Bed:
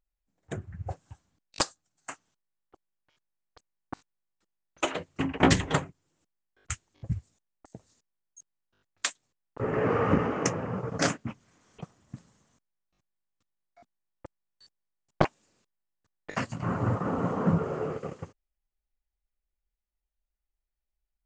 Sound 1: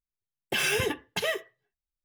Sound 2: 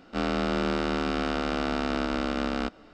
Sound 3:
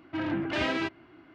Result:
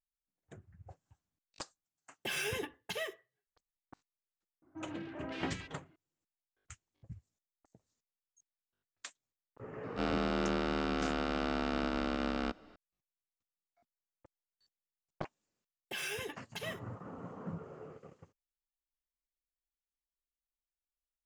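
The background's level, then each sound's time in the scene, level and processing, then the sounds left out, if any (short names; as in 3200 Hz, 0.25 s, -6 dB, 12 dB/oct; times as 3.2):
bed -17.5 dB
1.73 add 1 -10 dB
4.62 add 3 -13 dB + bands offset in time lows, highs 0.17 s, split 1400 Hz
9.83 add 2 -6 dB + Bessel low-pass 7100 Hz
15.39 add 1 -12.5 dB + low shelf 240 Hz -5.5 dB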